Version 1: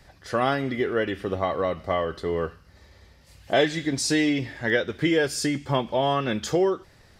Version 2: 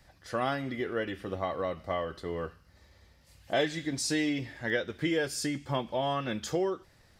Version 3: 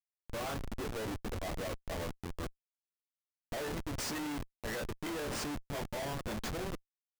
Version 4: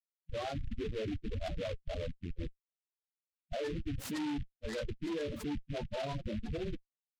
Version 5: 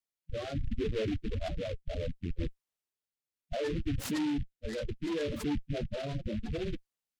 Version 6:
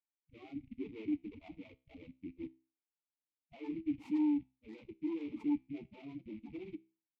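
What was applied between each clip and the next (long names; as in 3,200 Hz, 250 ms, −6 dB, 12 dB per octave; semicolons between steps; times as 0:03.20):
high-shelf EQ 9,100 Hz +4.5 dB; notch filter 410 Hz, Q 12; level −7 dB
harmonic and percussive parts rebalanced harmonic −10 dB; resonators tuned to a chord D2 sus4, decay 0.2 s; comparator with hysteresis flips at −46 dBFS; level +8.5 dB
spectral peaks only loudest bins 8; short delay modulated by noise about 2,400 Hz, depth 0.075 ms; level +3.5 dB
rotating-speaker cabinet horn 0.7 Hz; level +5.5 dB
formant filter u; tuned comb filter 65 Hz, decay 0.35 s, harmonics all, mix 40%; level +5 dB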